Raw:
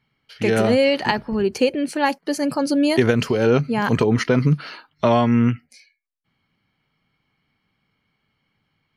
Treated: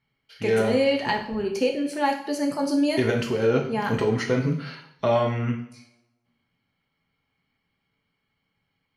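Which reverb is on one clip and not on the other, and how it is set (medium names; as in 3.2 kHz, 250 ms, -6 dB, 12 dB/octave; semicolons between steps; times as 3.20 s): two-slope reverb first 0.58 s, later 1.5 s, from -24 dB, DRR 1 dB; trim -7.5 dB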